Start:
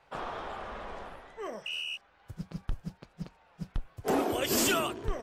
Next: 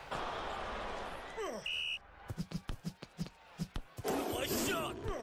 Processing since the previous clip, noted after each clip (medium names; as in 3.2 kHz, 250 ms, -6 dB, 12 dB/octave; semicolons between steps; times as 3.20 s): three bands compressed up and down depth 70%; trim -3 dB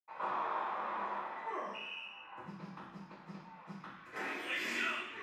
band-pass sweep 990 Hz -> 2 kHz, 3.59–4.25 s; reverberation RT60 0.75 s, pre-delay 76 ms; trim +18 dB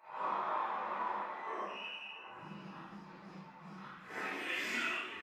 phase randomisation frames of 200 ms; delay 657 ms -17.5 dB